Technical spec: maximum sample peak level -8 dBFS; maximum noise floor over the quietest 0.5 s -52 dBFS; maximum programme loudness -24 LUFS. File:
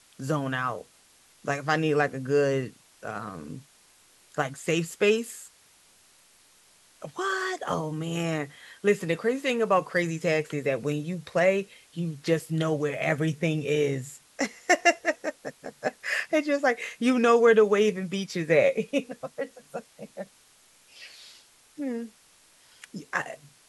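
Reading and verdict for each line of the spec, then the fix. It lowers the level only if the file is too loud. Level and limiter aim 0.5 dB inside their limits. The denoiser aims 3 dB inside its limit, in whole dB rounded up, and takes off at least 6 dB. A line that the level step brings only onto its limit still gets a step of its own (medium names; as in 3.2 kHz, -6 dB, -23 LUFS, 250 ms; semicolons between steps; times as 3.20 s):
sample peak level -6.5 dBFS: fail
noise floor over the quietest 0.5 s -59 dBFS: pass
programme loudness -26.5 LUFS: pass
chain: peak limiter -8.5 dBFS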